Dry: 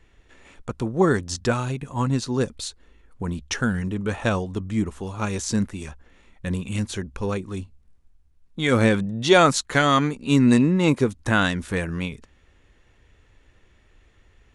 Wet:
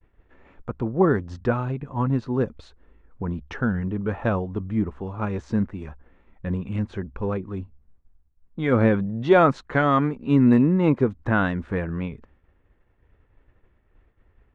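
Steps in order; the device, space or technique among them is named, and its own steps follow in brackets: hearing-loss simulation (low-pass 1.5 kHz 12 dB/octave; expander -51 dBFS)

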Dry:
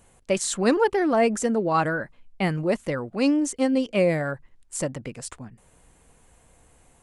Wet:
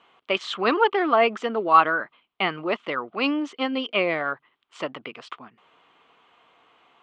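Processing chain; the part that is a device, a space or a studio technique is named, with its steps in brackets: phone earpiece (cabinet simulation 500–3400 Hz, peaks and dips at 540 Hz -9 dB, 810 Hz -3 dB, 1.2 kHz +7 dB, 1.7 kHz -6 dB, 3.2 kHz +7 dB); trim +6 dB

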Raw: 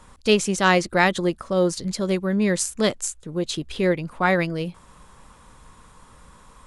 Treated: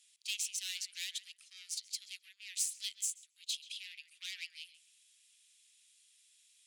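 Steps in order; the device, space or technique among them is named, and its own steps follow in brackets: rockabilly slapback (valve stage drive 20 dB, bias 0.45; tape echo 134 ms, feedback 30%, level -9 dB, low-pass 1.6 kHz); steep high-pass 2.6 kHz 36 dB/octave; trim -5 dB

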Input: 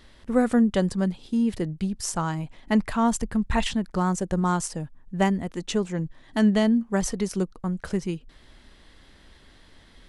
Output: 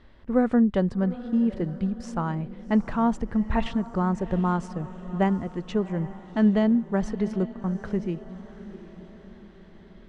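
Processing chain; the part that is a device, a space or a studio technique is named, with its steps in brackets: distance through air 81 m; through cloth (treble shelf 3.3 kHz -15 dB); echo that smears into a reverb 761 ms, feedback 49%, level -15 dB

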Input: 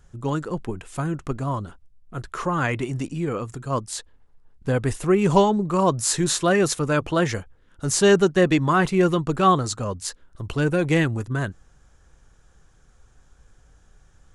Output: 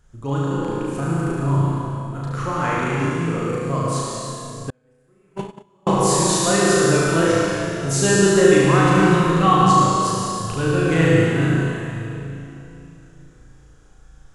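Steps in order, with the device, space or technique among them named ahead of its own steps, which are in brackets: 9.03–9.59 s: comb 1 ms, depth 49%; tunnel (flutter echo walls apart 6.2 m, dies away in 0.86 s; reverberation RT60 3.1 s, pre-delay 67 ms, DRR -2 dB); 4.70–5.87 s: gate -6 dBFS, range -40 dB; trim -3.5 dB

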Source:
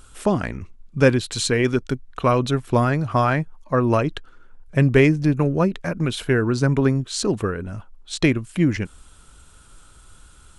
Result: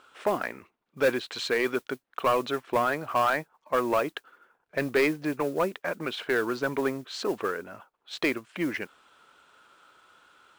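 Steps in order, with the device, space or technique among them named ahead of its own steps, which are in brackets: carbon microphone (band-pass 480–2900 Hz; saturation -16 dBFS, distortion -13 dB; modulation noise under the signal 23 dB)

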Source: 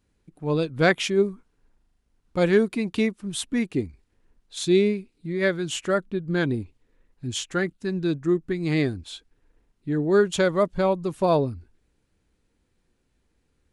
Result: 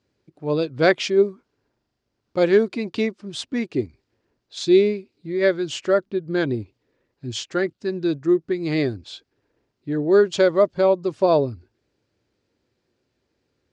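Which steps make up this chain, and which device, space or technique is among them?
car door speaker (cabinet simulation 110–6700 Hz, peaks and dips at 110 Hz +5 dB, 180 Hz -5 dB, 370 Hz +5 dB, 590 Hz +6 dB, 4.8 kHz +6 dB)

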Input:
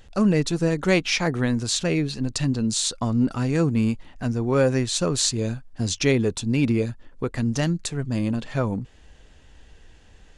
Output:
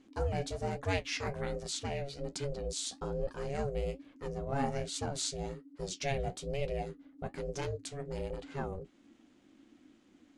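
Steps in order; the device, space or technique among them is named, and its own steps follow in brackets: alien voice (ring modulator 280 Hz; flange 1.2 Hz, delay 8.2 ms, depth 7.8 ms, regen -50%); trim -6.5 dB

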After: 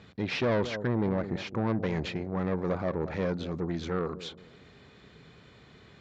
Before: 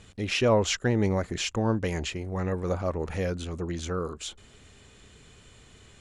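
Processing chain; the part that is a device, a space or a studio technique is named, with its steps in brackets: analogue delay pedal into a guitar amplifier (bucket-brigade echo 213 ms, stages 1024, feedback 31%, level -15 dB; valve stage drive 26 dB, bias 0.4; cabinet simulation 88–4400 Hz, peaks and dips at 89 Hz -6 dB, 160 Hz +4 dB, 2.9 kHz -8 dB); 0.67–1.67 s: treble shelf 2.6 kHz -8.5 dB; trim +3 dB

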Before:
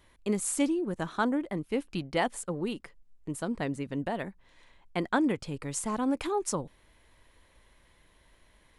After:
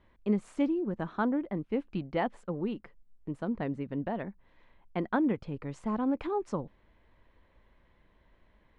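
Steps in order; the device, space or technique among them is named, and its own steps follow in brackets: phone in a pocket (low-pass 3.5 kHz 12 dB/octave; peaking EQ 210 Hz +4 dB 0.26 oct; treble shelf 2.2 kHz -10 dB); trim -1 dB

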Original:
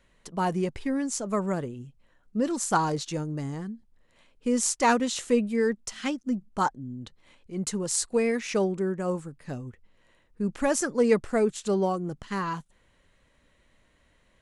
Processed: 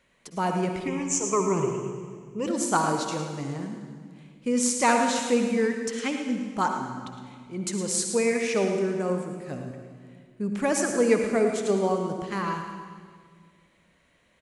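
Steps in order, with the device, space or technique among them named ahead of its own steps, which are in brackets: PA in a hall (high-pass 130 Hz 6 dB/octave; peaking EQ 2.3 kHz +5 dB 0.23 oct; delay 110 ms -11 dB; reverberation RT60 1.9 s, pre-delay 52 ms, DRR 4.5 dB); 0.87–2.47 s: rippled EQ curve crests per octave 0.73, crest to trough 16 dB

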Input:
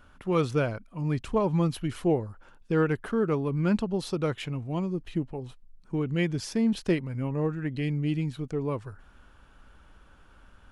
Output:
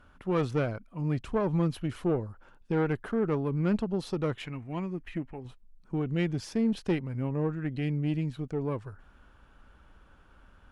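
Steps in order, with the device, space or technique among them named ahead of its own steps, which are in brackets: 4.46–5.45 s: graphic EQ 125/500/2000/4000 Hz -6/-6/+11/-6 dB; tube preamp driven hard (valve stage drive 19 dB, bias 0.4; treble shelf 3.7 kHz -6.5 dB)

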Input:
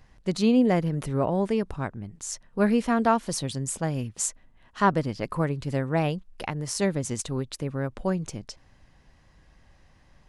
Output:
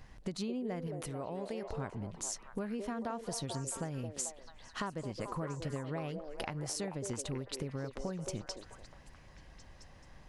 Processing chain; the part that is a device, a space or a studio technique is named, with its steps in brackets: serial compression, peaks first (compression, threshold -31 dBFS, peak gain reduction 15 dB; compression 2:1, threshold -41 dBFS, peak gain reduction 7.5 dB); 0.87–1.67 s: tilt EQ +1.5 dB/octave; repeats whose band climbs or falls 219 ms, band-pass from 460 Hz, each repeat 0.7 oct, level -2 dB; trim +1.5 dB

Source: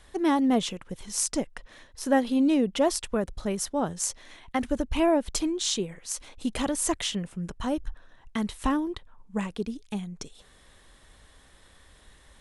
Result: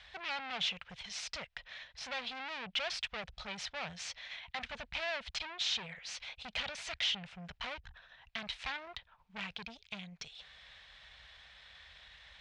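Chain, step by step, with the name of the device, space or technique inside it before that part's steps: scooped metal amplifier (valve stage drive 35 dB, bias 0.45; cabinet simulation 82–4300 Hz, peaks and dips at 97 Hz -8 dB, 350 Hz -6 dB, 690 Hz +4 dB, 1.1 kHz -4 dB, 2.4 kHz +4 dB; amplifier tone stack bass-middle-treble 10-0-10); trim +9.5 dB

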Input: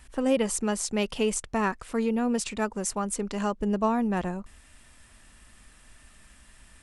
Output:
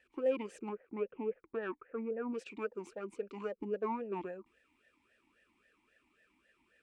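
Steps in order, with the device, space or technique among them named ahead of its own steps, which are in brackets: 0.69–2.33 s: steep low-pass 2 kHz 36 dB/octave; talk box (valve stage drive 18 dB, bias 0.65; talking filter e-u 3.7 Hz); trim +3.5 dB

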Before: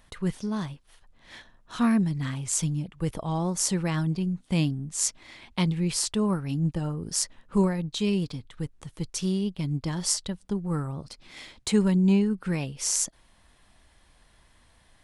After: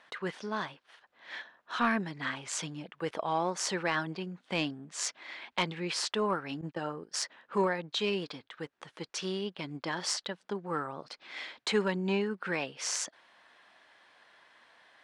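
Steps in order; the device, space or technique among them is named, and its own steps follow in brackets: intercom (band-pass 480–3800 Hz; peaking EQ 1.6 kHz +4.5 dB 0.46 oct; saturation -18 dBFS, distortion -24 dB); 6.61–7.21 s: gate -43 dBFS, range -18 dB; trim +3.5 dB

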